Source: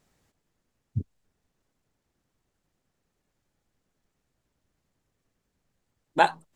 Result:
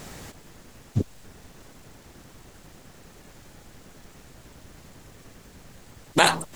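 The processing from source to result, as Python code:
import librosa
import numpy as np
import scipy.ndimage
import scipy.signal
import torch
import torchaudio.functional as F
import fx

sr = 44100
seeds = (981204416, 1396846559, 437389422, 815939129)

p1 = fx.over_compress(x, sr, threshold_db=-25.0, ratio=-0.5)
p2 = x + F.gain(torch.from_numpy(p1), 0.0).numpy()
p3 = fx.spectral_comp(p2, sr, ratio=2.0)
y = F.gain(torch.from_numpy(p3), 2.0).numpy()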